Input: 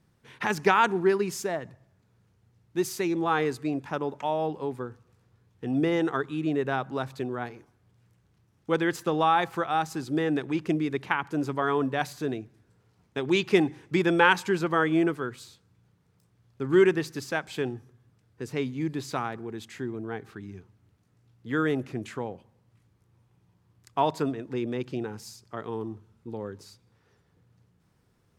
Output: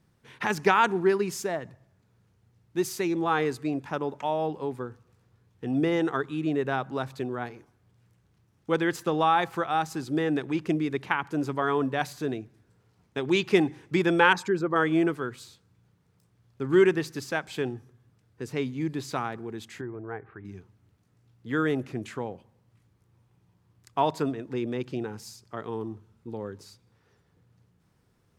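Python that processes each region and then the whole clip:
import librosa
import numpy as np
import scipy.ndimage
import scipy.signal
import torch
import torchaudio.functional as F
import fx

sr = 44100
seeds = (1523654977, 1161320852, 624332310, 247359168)

y = fx.chain(x, sr, fx.envelope_sharpen(power=1.5),
    fx.peak_eq(hz=2900.0, db=-6.0, octaves=0.51), at=(14.33, 14.76))
y = fx.chain(y, sr, fx.lowpass(hz=2000.0, slope=24),
    fx.peak_eq(hz=220.0, db=-9.5, octaves=0.87), at=(19.81, 20.45))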